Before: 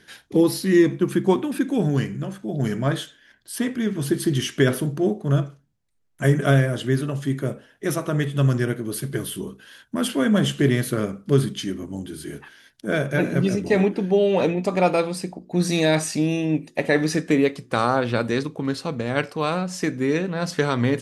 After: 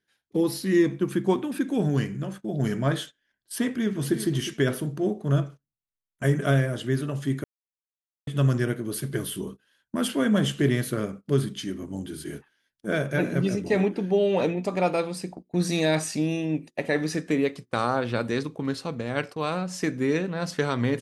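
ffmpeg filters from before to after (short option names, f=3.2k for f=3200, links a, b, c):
-filter_complex "[0:a]asplit=2[a][b];[b]afade=t=in:st=3.67:d=0.01,afade=t=out:st=4.17:d=0.01,aecho=0:1:360|720:0.316228|0.0474342[c];[a][c]amix=inputs=2:normalize=0,asplit=3[d][e][f];[d]atrim=end=7.44,asetpts=PTS-STARTPTS,afade=t=out:st=7.436:d=0.004:c=hsin[g];[e]atrim=start=7.44:end=8.27,asetpts=PTS-STARTPTS,volume=0[h];[f]atrim=start=8.27,asetpts=PTS-STARTPTS,afade=t=in:d=0.004:c=hsin[i];[g][h][i]concat=n=3:v=0:a=1,dynaudnorm=f=120:g=7:m=7dB,agate=range=-19dB:threshold=-30dB:ratio=16:detection=peak,volume=-8.5dB"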